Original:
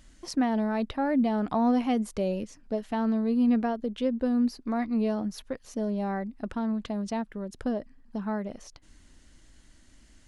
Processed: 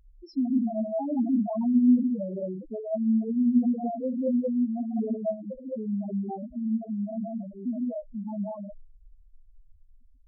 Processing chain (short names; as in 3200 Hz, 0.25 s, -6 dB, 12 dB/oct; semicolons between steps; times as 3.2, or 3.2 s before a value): non-linear reverb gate 0.24 s rising, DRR -3.5 dB; loudest bins only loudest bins 2